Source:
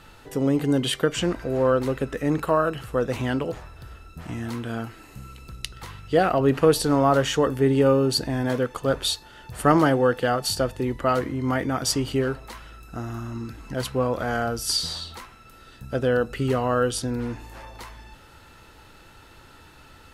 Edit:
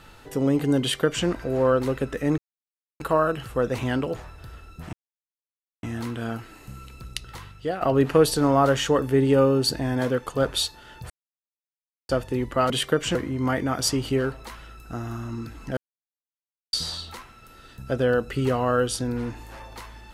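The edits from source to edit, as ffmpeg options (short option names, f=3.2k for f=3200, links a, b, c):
-filter_complex "[0:a]asplit=10[a][b][c][d][e][f][g][h][i][j];[a]atrim=end=2.38,asetpts=PTS-STARTPTS,afade=t=out:st=2.376:d=0.004:c=hsin,apad=pad_dur=0.62[k];[b]atrim=start=2.38:end=4.31,asetpts=PTS-STARTPTS,afade=t=in:d=0.004:c=hsin,afade=t=out:st=1.926:d=0.004:c=hsin,apad=pad_dur=0.9[l];[c]atrim=start=4.31:end=6.29,asetpts=PTS-STARTPTS,afade=t=in:d=0.004:c=hsin,afade=t=out:st=1.48:d=0.5:silence=0.199526[m];[d]atrim=start=6.29:end=9.58,asetpts=PTS-STARTPTS,afade=t=in:d=0.004:c=hsin:silence=0.199526,afade=t=out:st=3.286:d=0.004:c=hsin[n];[e]atrim=start=9.58:end=10.57,asetpts=PTS-STARTPTS,volume=0[o];[f]atrim=start=10.57:end=11.182,asetpts=PTS-STARTPTS,afade=t=in:d=0.004:c=hsin[p];[g]atrim=start=0.808:end=1.262[q];[h]atrim=start=11.178:end=13.8,asetpts=PTS-STARTPTS,afade=t=out:st=2.618:d=0.004:c=hsin[r];[i]atrim=start=13.8:end=14.76,asetpts=PTS-STARTPTS,volume=0[s];[j]atrim=start=14.76,asetpts=PTS-STARTPTS,afade=t=in:d=0.004:c=hsin[t];[k][l][m][n][o][p]concat=n=6:v=0:a=1[u];[u][q]acrossfade=d=0.004:c1=hsin:c2=hsin[v];[r][s][t]concat=n=3:v=0:a=1[w];[v][w]acrossfade=d=0.004:c1=hsin:c2=hsin"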